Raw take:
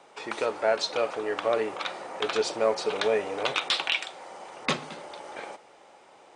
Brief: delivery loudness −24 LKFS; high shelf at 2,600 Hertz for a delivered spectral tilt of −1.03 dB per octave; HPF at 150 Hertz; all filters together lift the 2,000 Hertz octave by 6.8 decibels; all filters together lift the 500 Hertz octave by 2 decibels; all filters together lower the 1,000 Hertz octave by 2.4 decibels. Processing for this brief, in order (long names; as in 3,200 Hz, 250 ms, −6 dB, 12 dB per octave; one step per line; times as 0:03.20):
high-pass filter 150 Hz
parametric band 500 Hz +4 dB
parametric band 1,000 Hz −8.5 dB
parametric band 2,000 Hz +8 dB
high-shelf EQ 2,600 Hz +5.5 dB
level +0.5 dB